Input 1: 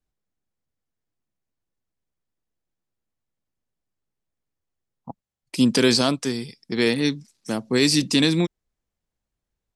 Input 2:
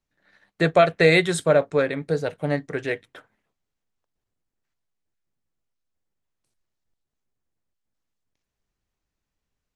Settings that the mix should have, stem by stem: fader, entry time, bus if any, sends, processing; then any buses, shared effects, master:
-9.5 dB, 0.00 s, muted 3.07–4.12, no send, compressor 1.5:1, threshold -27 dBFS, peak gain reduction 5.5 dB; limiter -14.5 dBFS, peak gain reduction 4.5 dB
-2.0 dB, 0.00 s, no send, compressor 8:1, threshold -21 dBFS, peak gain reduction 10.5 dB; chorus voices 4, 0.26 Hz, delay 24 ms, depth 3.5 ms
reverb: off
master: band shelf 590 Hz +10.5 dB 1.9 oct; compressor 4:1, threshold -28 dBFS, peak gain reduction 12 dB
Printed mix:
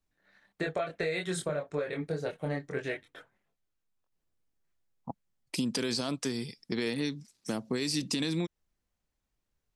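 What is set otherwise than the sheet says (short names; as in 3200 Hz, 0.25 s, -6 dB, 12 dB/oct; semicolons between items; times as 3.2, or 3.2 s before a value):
stem 1 -9.5 dB -> -2.5 dB; master: missing band shelf 590 Hz +10.5 dB 1.9 oct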